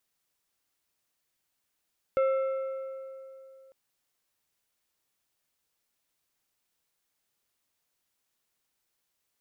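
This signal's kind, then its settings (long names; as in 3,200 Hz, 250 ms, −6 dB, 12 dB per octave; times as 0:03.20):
struck metal plate, lowest mode 533 Hz, decay 2.89 s, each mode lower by 10.5 dB, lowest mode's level −21 dB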